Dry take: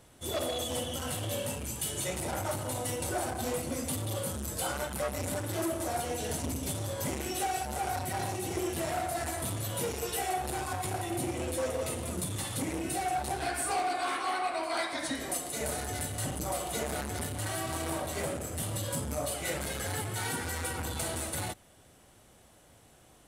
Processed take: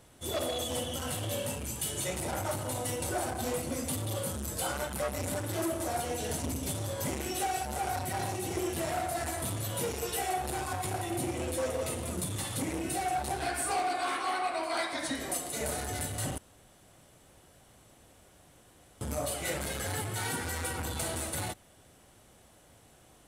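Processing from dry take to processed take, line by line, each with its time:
16.38–19.01 s: room tone

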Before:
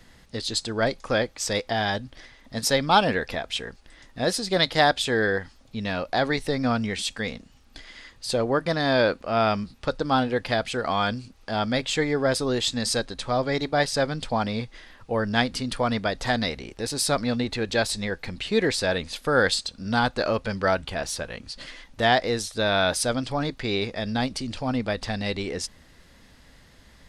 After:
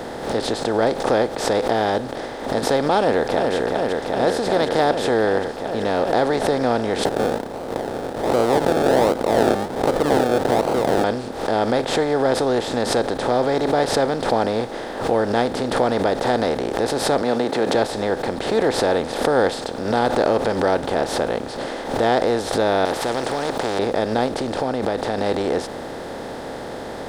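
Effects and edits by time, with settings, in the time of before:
2.99–3.54 s: echo throw 380 ms, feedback 75%, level -7 dB
7.05–11.04 s: decimation with a swept rate 35×, swing 60% 1.3 Hz
17.22–17.75 s: high-pass 180 Hz 24 dB/octave
22.85–23.79 s: spectrum-flattening compressor 4:1
24.52–25.18 s: compression 2.5:1, threshold -32 dBFS
whole clip: spectral levelling over time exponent 0.4; peaking EQ 420 Hz +14.5 dB 2.8 oct; swell ahead of each attack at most 79 dB/s; trim -13.5 dB

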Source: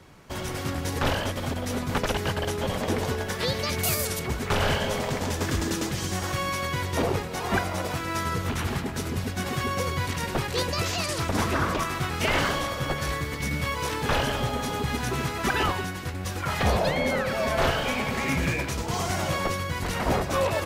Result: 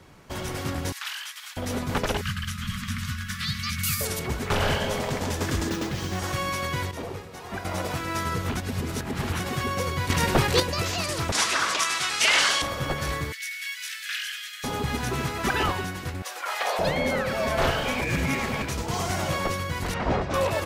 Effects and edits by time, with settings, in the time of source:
0.92–1.57 s: Bessel high-pass 2 kHz, order 6
2.21–4.01 s: Chebyshev band-stop 220–1200 Hz, order 4
5.69–6.19 s: median filter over 5 samples
6.91–7.65 s: feedback comb 97 Hz, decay 2 s, mix 70%
8.57–9.40 s: reverse
10.10–10.60 s: gain +6.5 dB
11.32–12.62 s: frequency weighting ITU-R 468
13.32–14.64 s: steep high-pass 1.6 kHz 48 dB/octave
16.22–16.79 s: high-pass 540 Hz 24 dB/octave
18.01–18.62 s: reverse
19.94–20.34 s: distance through air 140 m

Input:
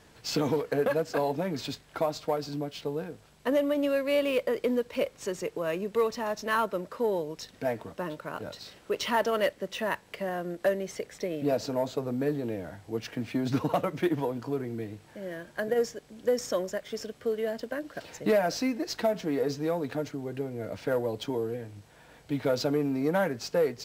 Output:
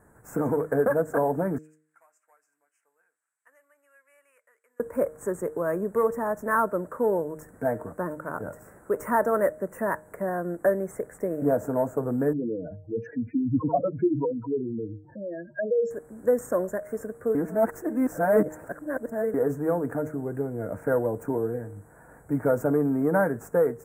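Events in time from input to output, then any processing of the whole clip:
1.58–4.80 s: ladder band-pass 3.6 kHz, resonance 55%
12.33–15.91 s: spectral contrast enhancement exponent 3.3
17.35–19.34 s: reverse
whole clip: elliptic band-stop 1.6–8.2 kHz, stop band 70 dB; de-hum 154.4 Hz, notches 4; level rider gain up to 4.5 dB

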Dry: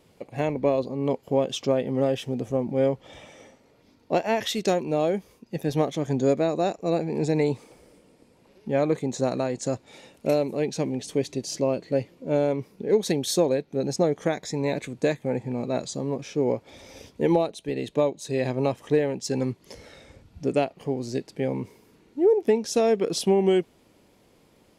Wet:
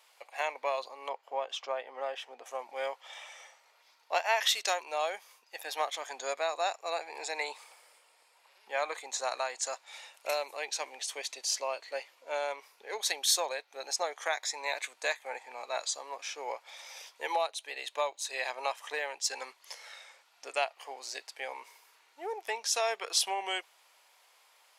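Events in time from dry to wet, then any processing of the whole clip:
1.09–2.46 s: low-pass 1.4 kHz 6 dB/octave
5.54–9.05 s: band-stop 6 kHz
whole clip: high-pass 840 Hz 24 dB/octave; trim +2.5 dB

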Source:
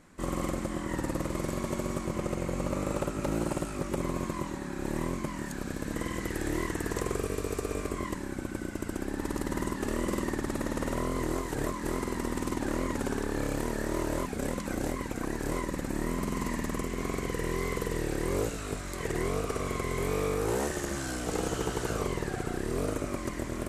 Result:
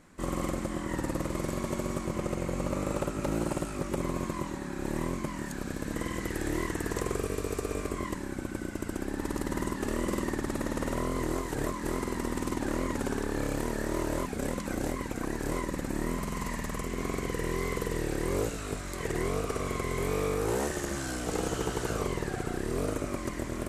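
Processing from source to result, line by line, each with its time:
16.17–16.86 s: peaking EQ 300 Hz -7.5 dB 0.84 oct

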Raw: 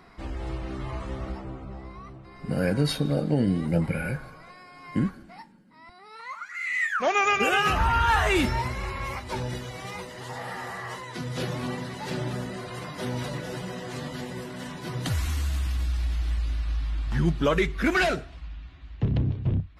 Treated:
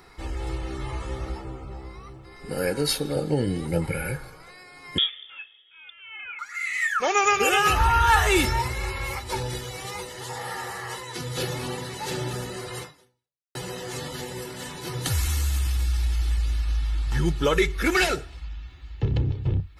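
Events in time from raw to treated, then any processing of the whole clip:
2.35–3.16 s: peaking EQ 110 Hz -13.5 dB
4.98–6.39 s: frequency inversion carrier 3.5 kHz
12.81–13.55 s: fade out exponential
whole clip: treble shelf 5.1 kHz +11.5 dB; comb 2.3 ms, depth 53%

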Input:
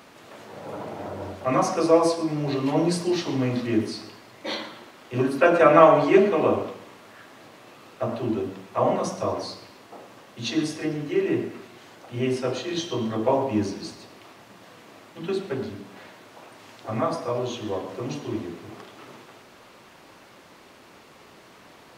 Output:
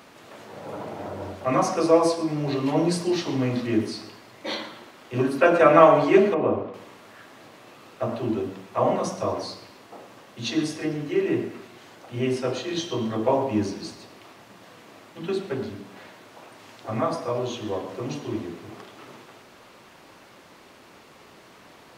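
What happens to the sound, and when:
6.34–6.74 s: tape spacing loss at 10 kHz 35 dB

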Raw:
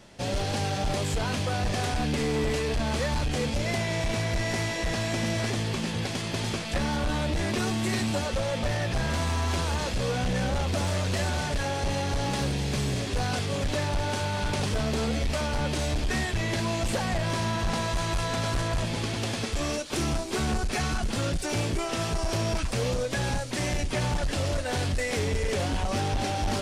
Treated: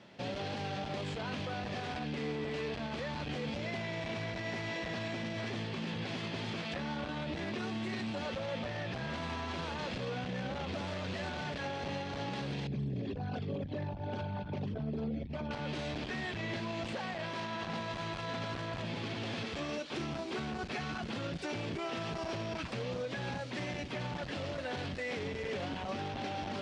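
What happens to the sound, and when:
12.67–15.51 s: resonances exaggerated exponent 2
16.95–17.67 s: bass shelf 170 Hz -10.5 dB
whole clip: Chebyshev band-pass 150–3400 Hz, order 2; peak limiter -26.5 dBFS; trim -3 dB

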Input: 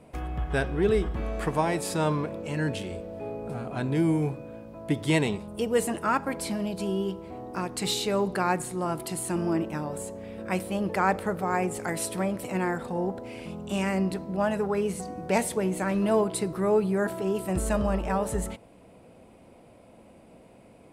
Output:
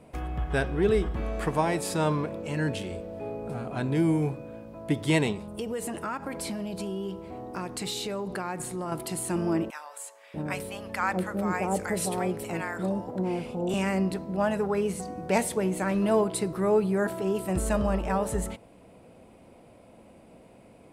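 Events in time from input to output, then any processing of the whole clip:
5.32–8.92 s: compression 5:1, threshold -29 dBFS
9.70–13.74 s: bands offset in time highs, lows 640 ms, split 820 Hz

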